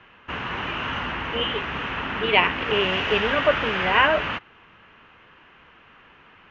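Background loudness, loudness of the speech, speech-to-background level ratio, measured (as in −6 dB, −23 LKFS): −27.0 LKFS, −22.5 LKFS, 4.5 dB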